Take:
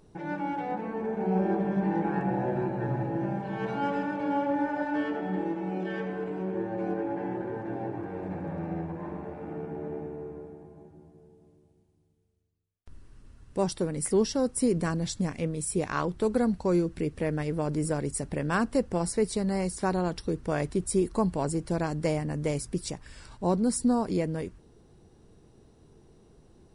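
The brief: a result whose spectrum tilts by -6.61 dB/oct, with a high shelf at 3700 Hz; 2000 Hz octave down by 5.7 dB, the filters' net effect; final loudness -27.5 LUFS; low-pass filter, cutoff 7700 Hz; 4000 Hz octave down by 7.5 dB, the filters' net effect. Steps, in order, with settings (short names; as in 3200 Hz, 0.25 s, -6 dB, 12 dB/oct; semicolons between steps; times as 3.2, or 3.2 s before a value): LPF 7700 Hz; bell 2000 Hz -6 dB; high shelf 3700 Hz -6.5 dB; bell 4000 Hz -3 dB; gain +3 dB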